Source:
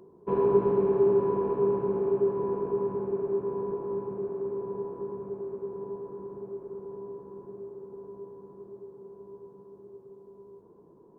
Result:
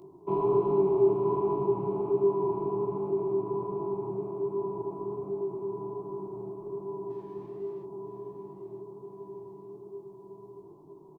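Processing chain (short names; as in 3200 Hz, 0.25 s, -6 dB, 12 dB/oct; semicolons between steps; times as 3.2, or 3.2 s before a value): in parallel at -1 dB: compressor, threshold -36 dBFS, peak gain reduction 17.5 dB; on the sum: fixed phaser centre 330 Hz, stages 8; 7.1–7.83 backlash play -56 dBFS; chorus 1.3 Hz, delay 20 ms, depth 6.5 ms; on a send: feedback echo 0.966 s, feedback 46%, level -11.5 dB; on the sum: gain +3 dB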